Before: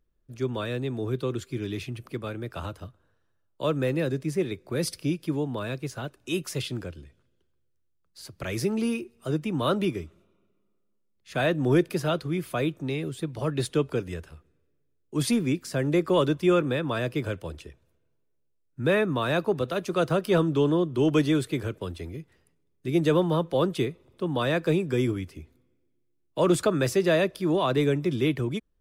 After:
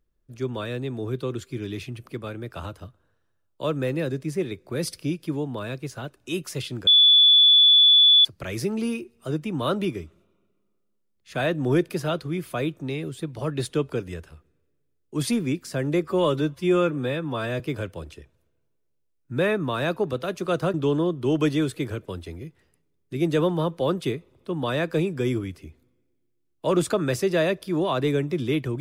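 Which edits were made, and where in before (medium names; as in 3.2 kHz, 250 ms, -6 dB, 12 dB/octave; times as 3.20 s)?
6.87–8.25 s: bleep 3.45 kHz -11.5 dBFS
16.04–17.08 s: stretch 1.5×
20.22–20.47 s: delete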